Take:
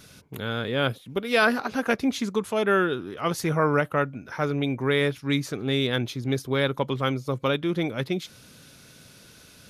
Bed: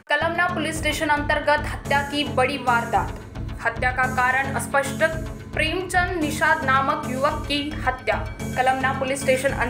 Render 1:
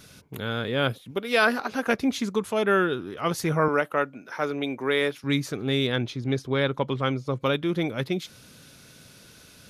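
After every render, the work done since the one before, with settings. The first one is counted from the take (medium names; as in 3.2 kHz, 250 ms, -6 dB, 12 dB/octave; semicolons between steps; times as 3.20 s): 1.11–1.87 s: bass shelf 140 Hz -9.5 dB; 3.68–5.24 s: high-pass 280 Hz; 5.92–7.41 s: distance through air 60 m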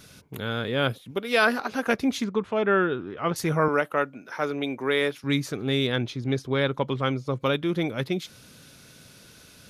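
2.24–3.36 s: low-pass 2.7 kHz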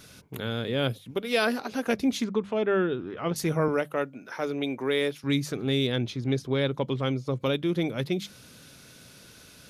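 hum notches 50/100/150/200 Hz; dynamic bell 1.3 kHz, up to -8 dB, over -38 dBFS, Q 0.86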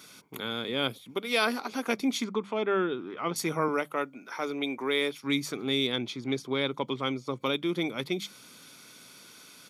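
high-pass 290 Hz 12 dB/octave; comb 0.9 ms, depth 42%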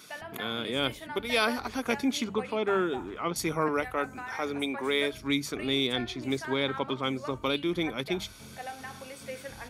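add bed -20.5 dB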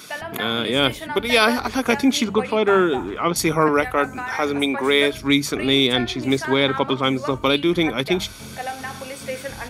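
trim +10.5 dB; peak limiter -2 dBFS, peak gain reduction 2 dB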